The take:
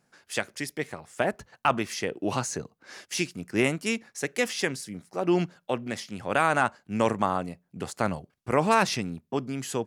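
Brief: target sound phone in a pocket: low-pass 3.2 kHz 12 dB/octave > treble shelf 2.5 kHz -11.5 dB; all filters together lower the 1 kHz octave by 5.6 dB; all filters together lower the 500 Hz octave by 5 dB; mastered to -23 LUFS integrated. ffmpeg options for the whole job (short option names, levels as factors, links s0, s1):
-af "lowpass=3200,equalizer=f=500:t=o:g=-5,equalizer=f=1000:t=o:g=-3.5,highshelf=f=2500:g=-11.5,volume=3.16"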